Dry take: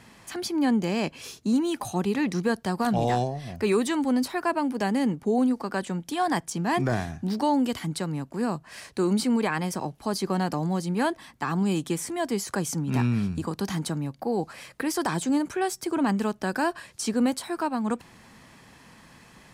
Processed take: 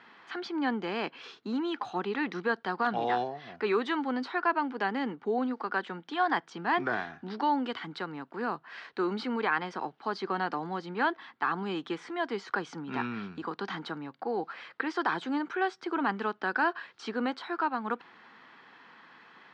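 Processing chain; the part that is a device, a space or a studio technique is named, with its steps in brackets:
phone earpiece (loudspeaker in its box 410–3,600 Hz, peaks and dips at 590 Hz −9 dB, 1,400 Hz +6 dB, 2,500 Hz −4 dB)

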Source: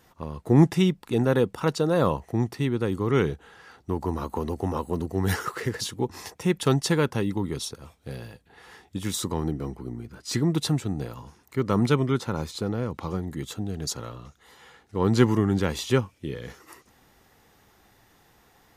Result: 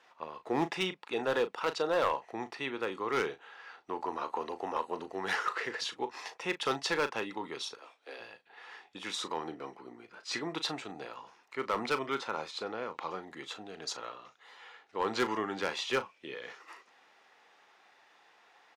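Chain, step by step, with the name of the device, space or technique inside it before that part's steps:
0:07.77–0:08.20: Butterworth high-pass 250 Hz 96 dB per octave
megaphone (band-pass filter 650–4,000 Hz; parametric band 2,500 Hz +4 dB 0.21 octaves; hard clipping −22.5 dBFS, distortion −14 dB; double-tracking delay 37 ms −12 dB)

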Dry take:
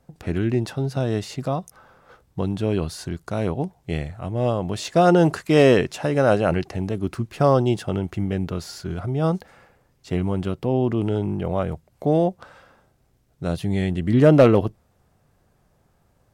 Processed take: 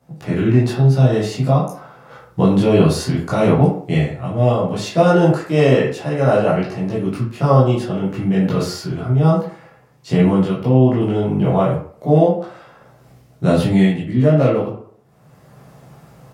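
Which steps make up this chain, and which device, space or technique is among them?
far laptop microphone (convolution reverb RT60 0.55 s, pre-delay 13 ms, DRR −8 dB; high-pass filter 110 Hz 12 dB per octave; automatic gain control)
level −1 dB

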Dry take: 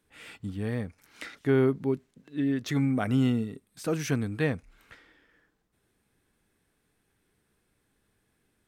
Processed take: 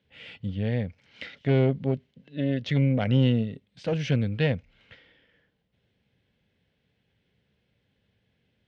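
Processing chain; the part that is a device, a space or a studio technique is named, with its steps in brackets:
guitar amplifier (tube saturation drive 20 dB, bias 0.7; bass and treble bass +11 dB, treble +11 dB; loudspeaker in its box 78–4,100 Hz, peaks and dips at 320 Hz −6 dB, 530 Hz +8 dB, 1,200 Hz −6 dB, 2,100 Hz +5 dB, 3,000 Hz +9 dB)
parametric band 630 Hz +2 dB

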